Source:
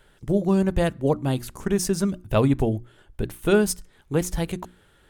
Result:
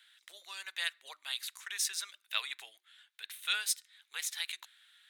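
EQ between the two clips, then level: ladder high-pass 1.6 kHz, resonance 35%; peaking EQ 3.8 kHz +11.5 dB 0.32 oct; +3.0 dB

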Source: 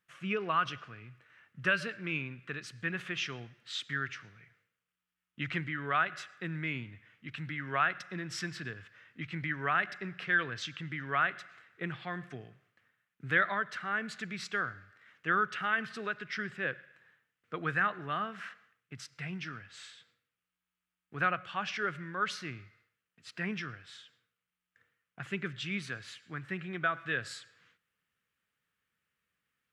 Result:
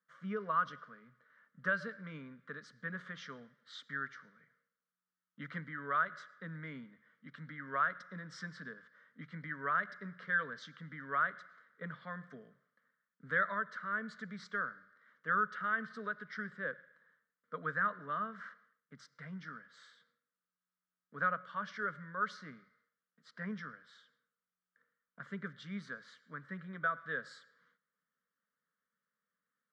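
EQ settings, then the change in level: high-pass 150 Hz; low-pass 3.7 kHz 12 dB/octave; static phaser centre 520 Hz, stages 8; -2.0 dB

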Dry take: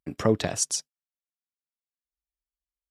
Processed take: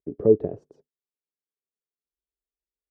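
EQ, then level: resonant low-pass 420 Hz, resonance Q 4.9; -4.0 dB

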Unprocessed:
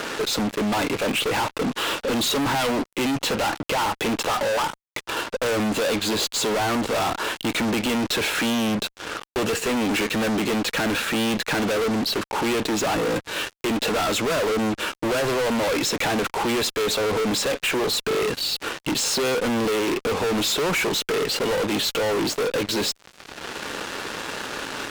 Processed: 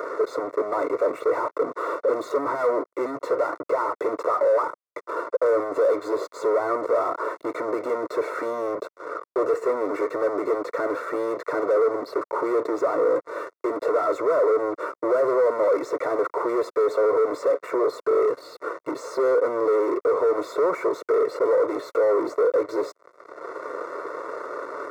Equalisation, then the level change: Savitzky-Golay filter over 65 samples; high-pass 450 Hz 12 dB/octave; static phaser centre 810 Hz, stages 6; +7.5 dB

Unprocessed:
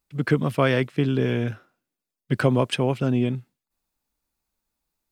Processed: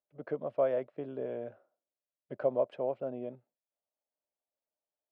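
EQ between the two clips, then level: band-pass filter 600 Hz, Q 5.4; distance through air 56 m; 0.0 dB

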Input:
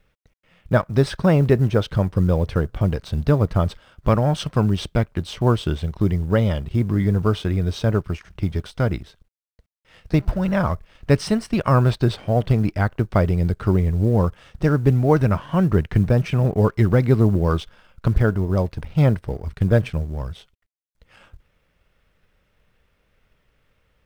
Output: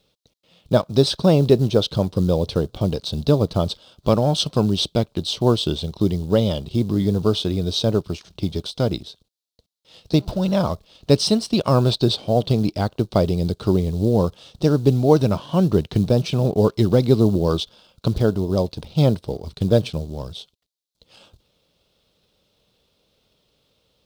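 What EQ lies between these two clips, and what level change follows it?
high-pass 350 Hz 6 dB/octave; tilt shelf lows +8.5 dB, about 1.3 kHz; resonant high shelf 2.7 kHz +13.5 dB, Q 3; -1.0 dB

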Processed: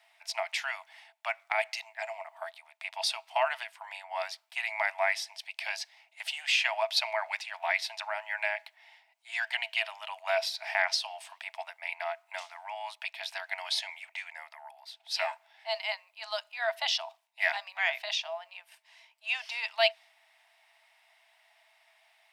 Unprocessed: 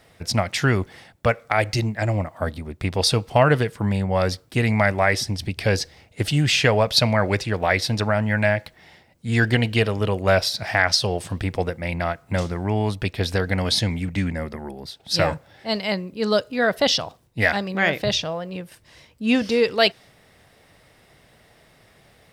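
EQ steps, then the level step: rippled Chebyshev high-pass 640 Hz, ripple 9 dB; -3.5 dB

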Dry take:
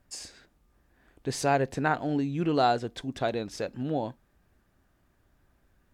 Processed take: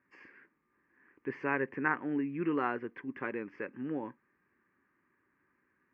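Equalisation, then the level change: distance through air 84 m; cabinet simulation 440–2200 Hz, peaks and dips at 490 Hz -5 dB, 820 Hz -7 dB, 1.4 kHz -10 dB; static phaser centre 1.6 kHz, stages 4; +7.0 dB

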